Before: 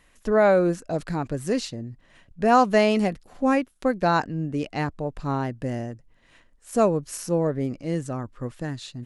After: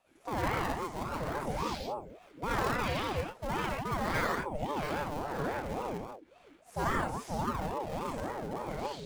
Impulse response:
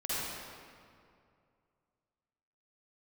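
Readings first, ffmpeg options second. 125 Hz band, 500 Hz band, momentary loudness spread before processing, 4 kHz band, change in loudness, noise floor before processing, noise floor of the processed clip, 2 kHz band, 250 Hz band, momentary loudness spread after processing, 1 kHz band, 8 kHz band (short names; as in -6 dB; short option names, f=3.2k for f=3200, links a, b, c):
-9.0 dB, -13.0 dB, 14 LU, -5.0 dB, -10.5 dB, -59 dBFS, -61 dBFS, -5.5 dB, -13.0 dB, 8 LU, -7.5 dB, -8.5 dB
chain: -filter_complex "[0:a]aeval=exprs='0.531*(cos(1*acos(clip(val(0)/0.531,-1,1)))-cos(1*PI/2))+0.0168*(cos(7*acos(clip(val(0)/0.531,-1,1)))-cos(7*PI/2))':c=same[a];[1:a]atrim=start_sample=2205,afade=t=out:st=0.29:d=0.01,atrim=end_sample=13230[b];[a][b]afir=irnorm=-1:irlink=0,acrossover=split=1100|5500[c][d][e];[c]acompressor=threshold=-27dB:ratio=4[f];[d]acompressor=threshold=-27dB:ratio=4[g];[e]acompressor=threshold=-50dB:ratio=4[h];[f][g][h]amix=inputs=3:normalize=0,asplit=2[i][j];[j]acrusher=samples=25:mix=1:aa=0.000001:lfo=1:lforange=40:lforate=0.39,volume=-5dB[k];[i][k]amix=inputs=2:normalize=0,aeval=exprs='val(0)*sin(2*PI*510*n/s+510*0.45/3.6*sin(2*PI*3.6*n/s))':c=same,volume=-6.5dB"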